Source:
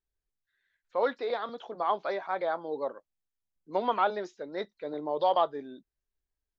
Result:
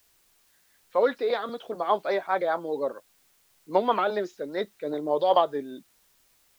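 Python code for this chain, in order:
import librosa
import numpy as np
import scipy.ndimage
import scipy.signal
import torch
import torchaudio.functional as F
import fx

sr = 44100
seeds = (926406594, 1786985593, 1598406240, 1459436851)

y = fx.rotary(x, sr, hz=5.0)
y = fx.quant_dither(y, sr, seeds[0], bits=12, dither='triangular')
y = y * 10.0 ** (7.5 / 20.0)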